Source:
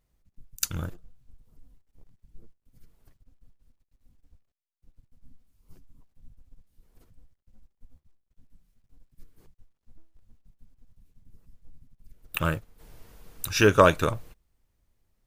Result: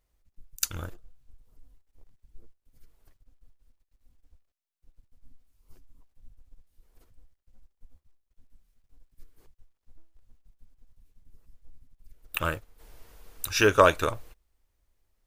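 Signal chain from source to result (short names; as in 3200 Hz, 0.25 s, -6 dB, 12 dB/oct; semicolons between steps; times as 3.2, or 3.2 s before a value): bell 160 Hz -10 dB 1.4 oct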